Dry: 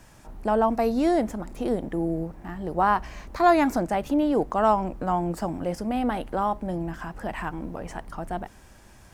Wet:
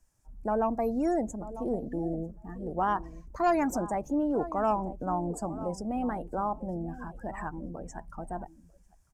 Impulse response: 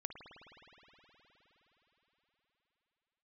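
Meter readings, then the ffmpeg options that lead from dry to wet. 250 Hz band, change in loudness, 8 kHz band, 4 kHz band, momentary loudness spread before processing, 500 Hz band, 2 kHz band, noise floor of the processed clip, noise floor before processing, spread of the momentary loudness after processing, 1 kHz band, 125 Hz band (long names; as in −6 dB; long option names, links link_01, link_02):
−5.5 dB, −6.0 dB, −1.0 dB, below −10 dB, 13 LU, −6.0 dB, −8.5 dB, −61 dBFS, −51 dBFS, 12 LU, −6.5 dB, −5.0 dB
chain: -filter_complex "[0:a]asplit=2[link_01][link_02];[link_02]aeval=exprs='0.126*(abs(mod(val(0)/0.126+3,4)-2)-1)':channel_layout=same,volume=-10.5dB[link_03];[link_01][link_03]amix=inputs=2:normalize=0,highshelf=frequency=4900:width_type=q:width=1.5:gain=8.5,aecho=1:1:947|1894:0.2|0.0419,afftdn=noise_reduction=21:noise_floor=-32,volume=-7.5dB"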